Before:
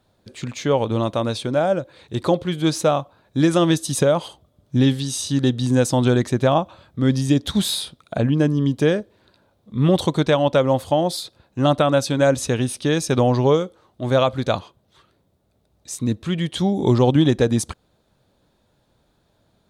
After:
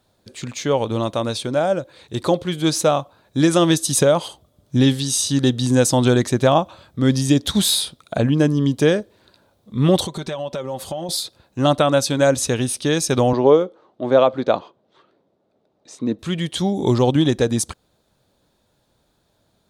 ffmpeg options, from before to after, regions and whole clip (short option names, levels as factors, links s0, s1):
-filter_complex "[0:a]asettb=1/sr,asplit=3[s0][s1][s2];[s0]atrim=end=10.054[s3];[s1]atrim=start=10.05:end=11.09,asetpts=PTS-STARTPTS,afade=t=in:d=0.004:c=qsin,afade=t=out:st=1.036:d=0.004:c=qsin,aecho=1:1:5.2:0.48,atrim=end_sample=45864,acompressor=threshold=0.0562:ratio=8:attack=3.2:release=140:knee=1:detection=peak[s4];[s2]atrim=start=11.086[s5];[s3][s4]acrossfade=d=0.004:c1=hsin:c2=qsin[s6];[s6][s5]acrossfade=d=0.004:c1=qsin:c2=hsin,asettb=1/sr,asplit=3[s7][s8][s9];[s7]atrim=end=13.334[s10];[s8]atrim=start=13.33:end=16.19,asetpts=PTS-STARTPTS,afade=t=in:d=0.004:c=qsin,afade=t=out:st=2.856:d=0.004:c=qsin,highpass=280,lowpass=4200,tiltshelf=f=1200:g=6[s11];[s9]atrim=start=16.186[s12];[s10][s11]acrossfade=d=0.004:c1=hsin:c2=qsin[s13];[s13][s12]acrossfade=d=0.004:c1=qsin:c2=hsin,bass=f=250:g=-2,treble=f=4000:g=5,dynaudnorm=f=340:g=17:m=1.5"